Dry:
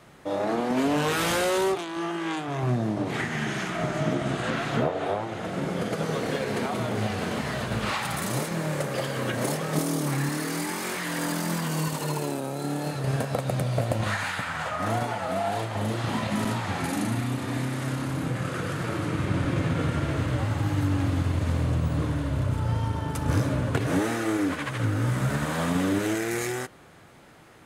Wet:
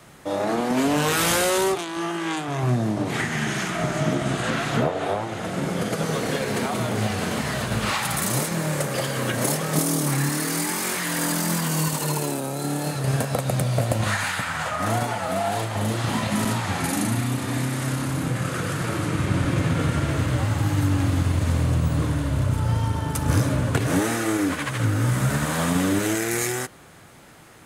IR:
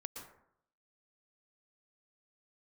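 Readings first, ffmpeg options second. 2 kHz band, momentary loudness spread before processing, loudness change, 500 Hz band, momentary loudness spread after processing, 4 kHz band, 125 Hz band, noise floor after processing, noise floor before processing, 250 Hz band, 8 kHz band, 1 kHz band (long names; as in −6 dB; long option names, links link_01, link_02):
+4.0 dB, 4 LU, +4.0 dB, +2.0 dB, 4 LU, +5.0 dB, +4.0 dB, −31 dBFS, −34 dBFS, +3.0 dB, +9.0 dB, +3.0 dB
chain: -filter_complex "[0:a]acrossover=split=320|5900[link_01][link_02][link_03];[link_02]lowshelf=frequency=410:gain=-5.5[link_04];[link_03]acontrast=52[link_05];[link_01][link_04][link_05]amix=inputs=3:normalize=0,volume=4dB"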